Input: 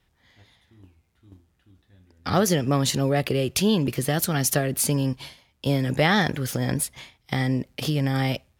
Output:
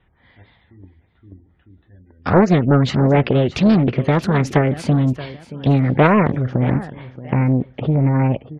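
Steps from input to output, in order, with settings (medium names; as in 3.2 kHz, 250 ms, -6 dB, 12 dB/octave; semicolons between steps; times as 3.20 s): low-pass 2.4 kHz 12 dB/octave, from 6.07 s 1.3 kHz; spectral gate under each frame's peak -30 dB strong; feedback delay 627 ms, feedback 32%, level -16.5 dB; loudspeaker Doppler distortion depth 0.5 ms; trim +8 dB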